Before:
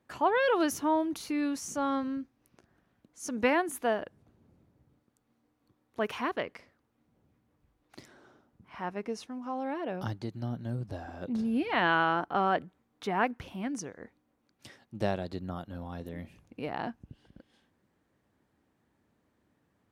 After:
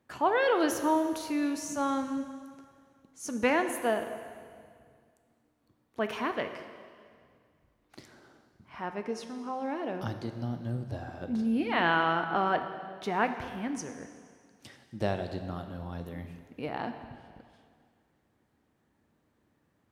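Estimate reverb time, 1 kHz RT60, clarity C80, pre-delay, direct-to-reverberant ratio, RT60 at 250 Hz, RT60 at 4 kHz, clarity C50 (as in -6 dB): 2.1 s, 2.1 s, 10.0 dB, 5 ms, 7.5 dB, 2.1 s, 2.0 s, 9.0 dB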